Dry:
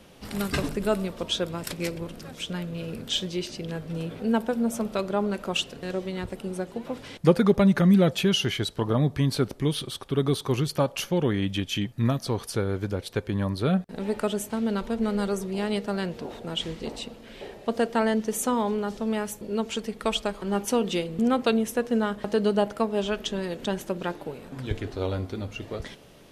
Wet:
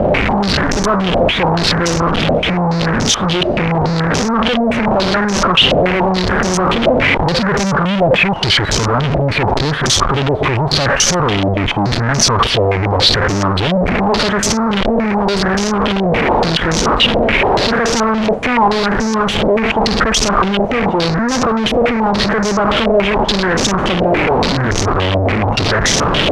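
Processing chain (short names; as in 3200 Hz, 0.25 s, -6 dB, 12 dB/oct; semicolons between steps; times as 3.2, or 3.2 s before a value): delta modulation 64 kbps, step -19 dBFS; soft clip -23 dBFS, distortion -11 dB; low shelf 220 Hz +10 dB; fuzz box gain 41 dB, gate -46 dBFS; stepped low-pass 7 Hz 640–6000 Hz; gain -1.5 dB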